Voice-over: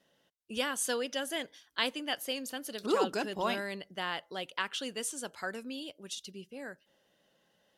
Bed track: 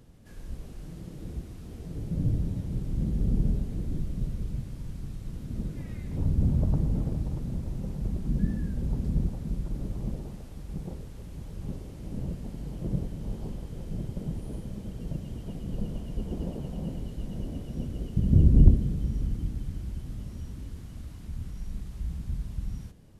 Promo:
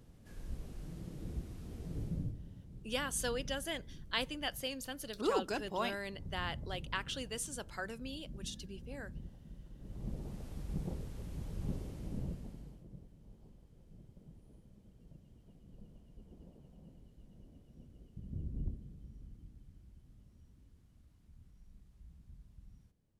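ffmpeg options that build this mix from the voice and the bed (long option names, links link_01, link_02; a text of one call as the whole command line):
ffmpeg -i stem1.wav -i stem2.wav -filter_complex "[0:a]adelay=2350,volume=-4dB[link_01];[1:a]volume=13dB,afade=type=out:start_time=2.02:duration=0.33:silence=0.16788,afade=type=in:start_time=9.79:duration=0.7:silence=0.133352,afade=type=out:start_time=11.84:duration=1.01:silence=0.0944061[link_02];[link_01][link_02]amix=inputs=2:normalize=0" out.wav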